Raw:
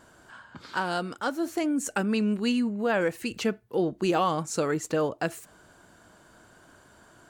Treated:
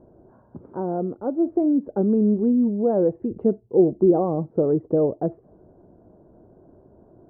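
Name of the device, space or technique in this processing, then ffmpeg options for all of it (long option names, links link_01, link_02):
under water: -af "lowpass=frequency=640:width=0.5412,lowpass=frequency=640:width=1.3066,equalizer=frequency=380:width_type=o:width=0.25:gain=5.5,volume=6.5dB"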